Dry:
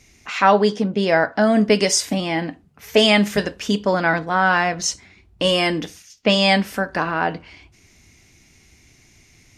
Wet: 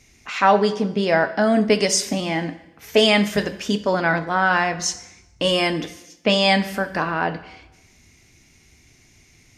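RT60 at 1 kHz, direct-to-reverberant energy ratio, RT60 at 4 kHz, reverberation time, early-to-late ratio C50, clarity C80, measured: 0.90 s, 11.5 dB, 0.85 s, 0.90 s, 14.5 dB, 16.5 dB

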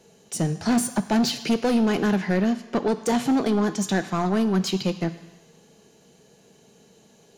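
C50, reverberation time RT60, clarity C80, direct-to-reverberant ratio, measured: 14.0 dB, 1.1 s, 15.0 dB, 11.5 dB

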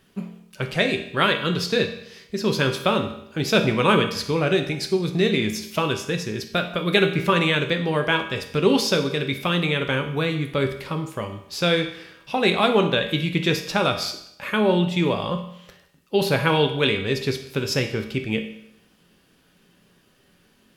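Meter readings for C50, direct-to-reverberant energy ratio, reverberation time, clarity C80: 9.0 dB, 4.5 dB, 0.75 s, 12.0 dB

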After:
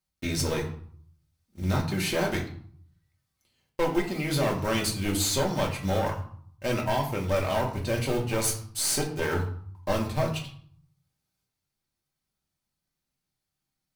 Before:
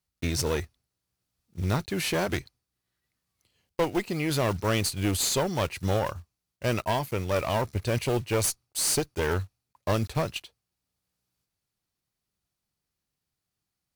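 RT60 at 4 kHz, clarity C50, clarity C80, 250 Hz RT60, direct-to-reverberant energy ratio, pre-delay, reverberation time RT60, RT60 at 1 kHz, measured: 0.40 s, 8.5 dB, 12.0 dB, 0.70 s, -1.5 dB, 3 ms, 0.55 s, 0.60 s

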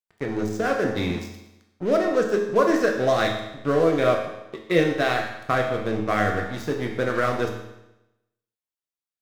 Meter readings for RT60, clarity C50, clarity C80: 0.90 s, 5.0 dB, 7.5 dB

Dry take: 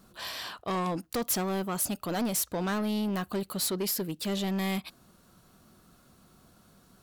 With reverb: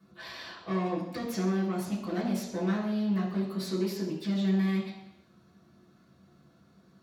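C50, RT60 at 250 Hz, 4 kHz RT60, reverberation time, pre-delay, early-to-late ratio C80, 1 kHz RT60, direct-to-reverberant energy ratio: 5.0 dB, 0.80 s, 0.85 s, 0.80 s, 3 ms, 7.5 dB, 0.80 s, -7.5 dB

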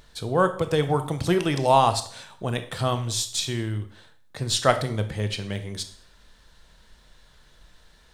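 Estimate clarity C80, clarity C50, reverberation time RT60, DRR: 15.5 dB, 12.0 dB, 0.55 s, 8.5 dB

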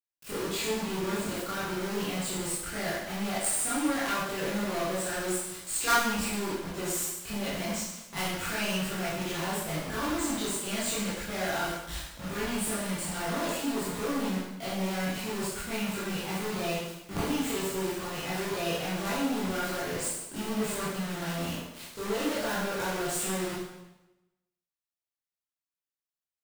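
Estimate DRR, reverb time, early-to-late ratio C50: -10.5 dB, 0.95 s, -0.5 dB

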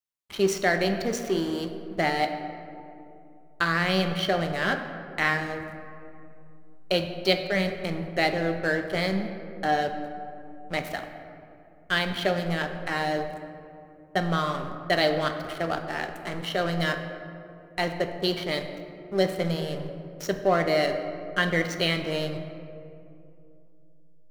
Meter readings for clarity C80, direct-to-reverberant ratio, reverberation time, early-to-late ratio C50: 9.0 dB, 6.0 dB, 2.7 s, 8.0 dB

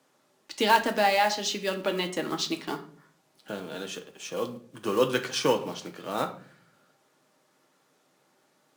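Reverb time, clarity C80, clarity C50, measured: 0.50 s, 17.0 dB, 12.5 dB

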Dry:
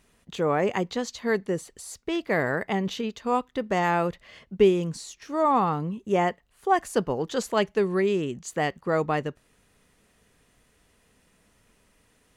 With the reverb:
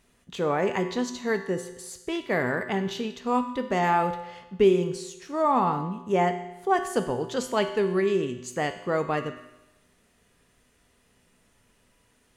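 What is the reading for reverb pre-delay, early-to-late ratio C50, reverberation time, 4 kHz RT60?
3 ms, 10.0 dB, 1.0 s, 0.95 s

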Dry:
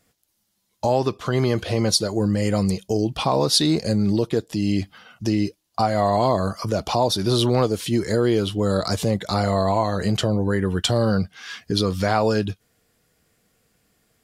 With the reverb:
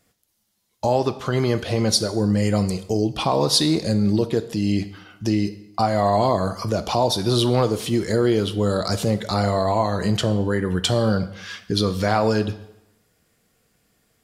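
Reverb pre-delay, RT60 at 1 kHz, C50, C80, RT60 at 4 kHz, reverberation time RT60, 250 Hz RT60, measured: 15 ms, 0.90 s, 14.0 dB, 16.0 dB, 0.75 s, 0.90 s, 0.85 s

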